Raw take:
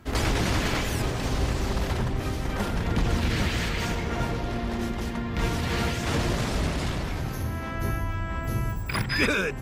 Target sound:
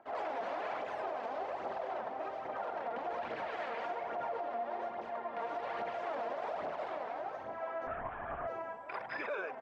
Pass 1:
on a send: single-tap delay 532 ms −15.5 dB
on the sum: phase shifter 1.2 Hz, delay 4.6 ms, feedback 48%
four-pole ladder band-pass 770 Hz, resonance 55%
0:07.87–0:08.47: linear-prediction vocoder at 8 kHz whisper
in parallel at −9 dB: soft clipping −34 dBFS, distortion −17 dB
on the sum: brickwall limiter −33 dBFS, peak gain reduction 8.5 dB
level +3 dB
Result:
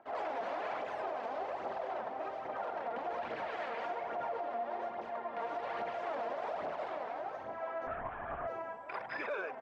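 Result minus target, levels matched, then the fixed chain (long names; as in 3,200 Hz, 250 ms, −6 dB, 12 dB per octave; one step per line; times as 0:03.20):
soft clipping: distortion +16 dB
on a send: single-tap delay 532 ms −15.5 dB
on the sum: phase shifter 1.2 Hz, delay 4.6 ms, feedback 48%
four-pole ladder band-pass 770 Hz, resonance 55%
0:07.87–0:08.47: linear-prediction vocoder at 8 kHz whisper
in parallel at −9 dB: soft clipping −24 dBFS, distortion −32 dB
on the sum: brickwall limiter −33 dBFS, peak gain reduction 9.5 dB
level +3 dB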